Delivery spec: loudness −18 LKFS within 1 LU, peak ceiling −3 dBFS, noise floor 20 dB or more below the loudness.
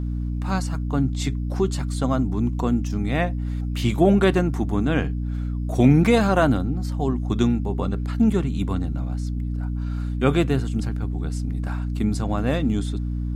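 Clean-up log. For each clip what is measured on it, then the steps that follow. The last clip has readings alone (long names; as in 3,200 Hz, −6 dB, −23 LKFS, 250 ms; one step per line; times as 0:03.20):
mains hum 60 Hz; hum harmonics up to 300 Hz; level of the hum −23 dBFS; integrated loudness −23.0 LKFS; sample peak −3.5 dBFS; target loudness −18.0 LKFS
→ mains-hum notches 60/120/180/240/300 Hz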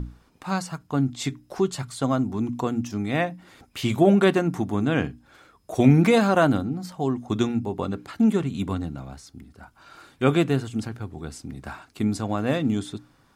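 mains hum none found; integrated loudness −24.0 LKFS; sample peak −4.5 dBFS; target loudness −18.0 LKFS
→ level +6 dB
brickwall limiter −3 dBFS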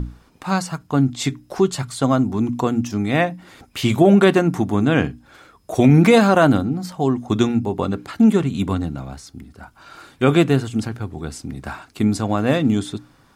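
integrated loudness −18.5 LKFS; sample peak −3.0 dBFS; background noise floor −54 dBFS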